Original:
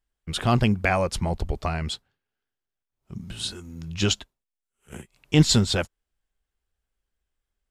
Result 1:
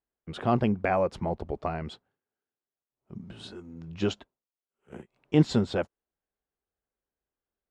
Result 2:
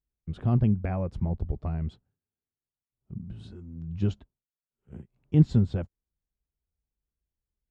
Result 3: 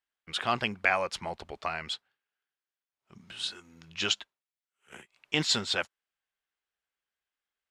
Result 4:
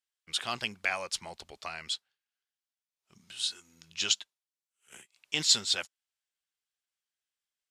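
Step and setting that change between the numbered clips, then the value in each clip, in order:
band-pass filter, frequency: 460 Hz, 110 Hz, 2 kHz, 5.1 kHz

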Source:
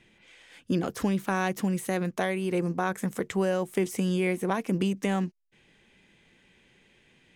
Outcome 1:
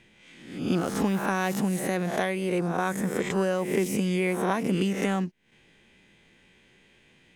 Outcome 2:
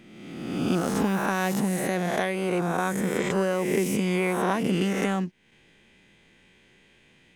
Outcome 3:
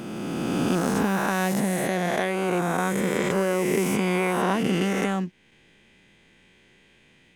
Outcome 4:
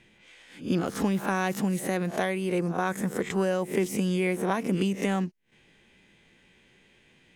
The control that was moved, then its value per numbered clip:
reverse spectral sustain, rising 60 dB in: 0.65 s, 1.38 s, 2.95 s, 0.3 s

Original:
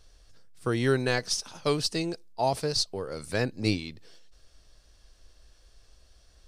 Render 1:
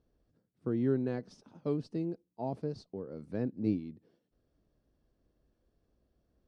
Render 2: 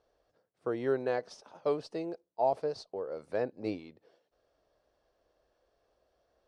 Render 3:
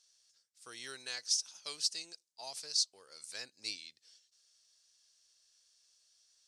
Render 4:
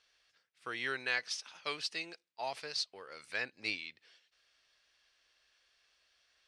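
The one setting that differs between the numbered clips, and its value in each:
band-pass filter, frequency: 230 Hz, 590 Hz, 6.6 kHz, 2.3 kHz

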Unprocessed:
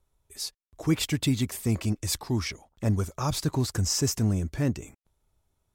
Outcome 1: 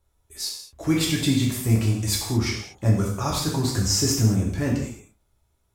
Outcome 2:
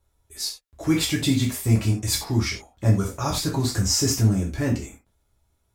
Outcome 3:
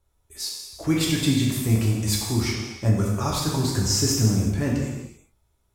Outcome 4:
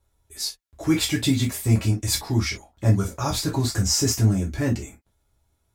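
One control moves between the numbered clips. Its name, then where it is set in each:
gated-style reverb, gate: 250 ms, 120 ms, 420 ms, 80 ms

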